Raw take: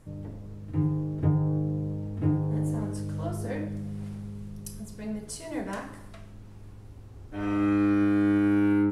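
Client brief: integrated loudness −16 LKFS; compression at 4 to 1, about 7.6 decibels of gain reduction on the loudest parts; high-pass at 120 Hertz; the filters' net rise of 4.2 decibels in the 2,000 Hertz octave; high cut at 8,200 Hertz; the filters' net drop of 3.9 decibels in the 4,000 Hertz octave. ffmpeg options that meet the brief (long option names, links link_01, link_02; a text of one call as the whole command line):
ffmpeg -i in.wav -af "highpass=120,lowpass=8200,equalizer=frequency=2000:width_type=o:gain=7.5,equalizer=frequency=4000:width_type=o:gain=-8.5,acompressor=threshold=-29dB:ratio=4,volume=18.5dB" out.wav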